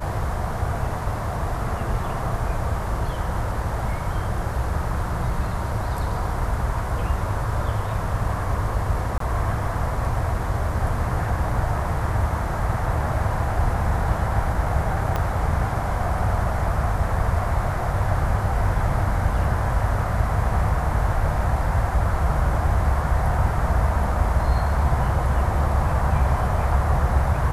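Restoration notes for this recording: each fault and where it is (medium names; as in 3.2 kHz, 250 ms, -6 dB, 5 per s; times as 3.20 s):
9.18–9.20 s: dropout 23 ms
15.16 s: pop -11 dBFS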